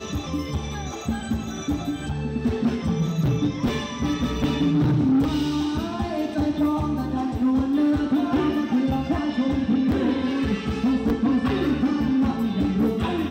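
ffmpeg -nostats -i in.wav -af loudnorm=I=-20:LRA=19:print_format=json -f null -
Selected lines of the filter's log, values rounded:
"input_i" : "-23.5",
"input_tp" : "-14.1",
"input_lra" : "2.8",
"input_thresh" : "-33.5",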